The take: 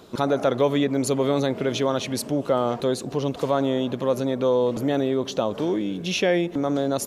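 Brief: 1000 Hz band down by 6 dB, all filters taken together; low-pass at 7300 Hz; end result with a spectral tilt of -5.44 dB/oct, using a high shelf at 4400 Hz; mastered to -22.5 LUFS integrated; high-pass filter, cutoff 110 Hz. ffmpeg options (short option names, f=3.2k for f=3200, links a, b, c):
-af "highpass=110,lowpass=7.3k,equalizer=f=1k:t=o:g=-8.5,highshelf=f=4.4k:g=-3.5,volume=3dB"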